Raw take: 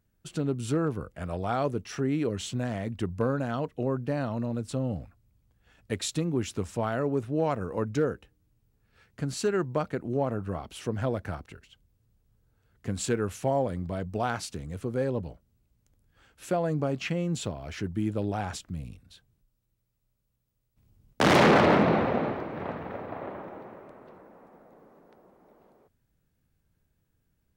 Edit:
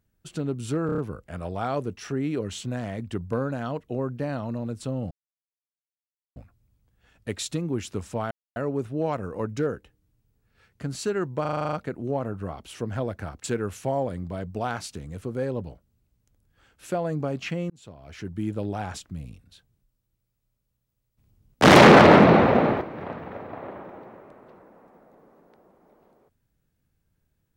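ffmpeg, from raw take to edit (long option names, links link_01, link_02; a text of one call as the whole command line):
ffmpeg -i in.wav -filter_complex "[0:a]asplit=19[link_01][link_02][link_03][link_04][link_05][link_06][link_07][link_08][link_09][link_10][link_11][link_12][link_13][link_14][link_15][link_16][link_17][link_18][link_19];[link_01]atrim=end=0.892[link_20];[link_02]atrim=start=0.858:end=0.892[link_21];[link_03]atrim=start=0.858:end=0.892[link_22];[link_04]atrim=start=0.858:end=0.892[link_23];[link_05]atrim=start=0.858:end=4.99,asetpts=PTS-STARTPTS,afade=type=out:start_time=4.128:duration=0.004:curve=hsin,apad=pad_dur=1.25[link_24];[link_06]atrim=start=4.99:end=6.94,asetpts=PTS-STARTPTS,afade=type=in:duration=0.004:curve=hsin,afade=type=out:start_time=1.946:duration=0.004:curve=hsin,apad=pad_dur=0.25[link_25];[link_07]atrim=start=6.94:end=9.832,asetpts=PTS-STARTPTS,afade=type=in:duration=0.004:curve=hsin[link_26];[link_08]atrim=start=9.788:end=9.832[link_27];[link_09]atrim=start=9.788:end=9.832[link_28];[link_10]atrim=start=9.788:end=9.832[link_29];[link_11]atrim=start=9.788:end=9.832[link_30];[link_12]atrim=start=9.788:end=9.832[link_31];[link_13]atrim=start=9.788:end=9.832[link_32];[link_14]atrim=start=9.788:end=9.832[link_33];[link_15]atrim=start=9.788:end=11.502[link_34];[link_16]atrim=start=13.028:end=17.29,asetpts=PTS-STARTPTS,afade=type=out:start_time=4.258:duration=0.004:curve=hsin[link_35];[link_17]atrim=start=17.29:end=21.222,asetpts=PTS-STARTPTS,afade=type=in:duration=0.75[link_36];[link_18]atrim=start=21.218:end=22.402,asetpts=PTS-STARTPTS,volume=8dB[link_37];[link_19]atrim=start=22.398[link_38];[link_20][link_21]acrossfade=duration=0.004:curve1=hsin:curve2=hsin[link_39];[link_39][link_22]acrossfade=duration=0.004:curve1=hsin:curve2=hsin[link_40];[link_40][link_23]acrossfade=duration=0.004:curve1=hsin:curve2=hsin[link_41];[link_24][link_25][link_26]concat=n=3:v=0:a=1[link_42];[link_41][link_42]acrossfade=duration=0.004:curve1=hsin:curve2=hsin[link_43];[link_43][link_27]acrossfade=duration=0.004:curve1=hsin:curve2=hsin[link_44];[link_44][link_28]acrossfade=duration=0.004:curve1=hsin:curve2=hsin[link_45];[link_45][link_29]acrossfade=duration=0.004:curve1=hsin:curve2=hsin[link_46];[link_46][link_30]acrossfade=duration=0.004:curve1=hsin:curve2=hsin[link_47];[link_47][link_31]acrossfade=duration=0.004:curve1=hsin:curve2=hsin[link_48];[link_48][link_32]acrossfade=duration=0.004:curve1=hsin:curve2=hsin[link_49];[link_49][link_33]acrossfade=duration=0.004:curve1=hsin:curve2=hsin[link_50];[link_50][link_34]acrossfade=duration=0.004:curve1=hsin:curve2=hsin[link_51];[link_35][link_36]concat=n=2:v=0:a=1[link_52];[link_51][link_52]acrossfade=duration=0.004:curve1=hsin:curve2=hsin[link_53];[link_53][link_37]acrossfade=duration=0.004:curve1=hsin:curve2=hsin[link_54];[link_54][link_38]acrossfade=duration=0.004:curve1=hsin:curve2=hsin" out.wav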